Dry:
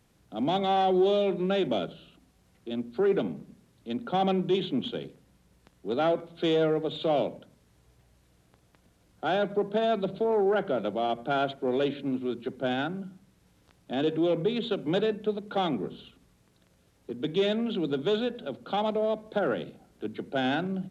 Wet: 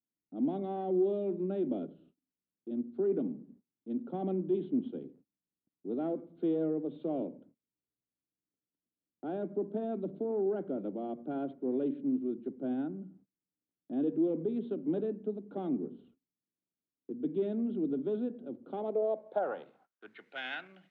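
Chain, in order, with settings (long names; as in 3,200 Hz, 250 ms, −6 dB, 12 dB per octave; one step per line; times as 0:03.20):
noise gate −53 dBFS, range −27 dB
band-pass filter sweep 280 Hz → 2,100 Hz, 0:18.58–0:20.31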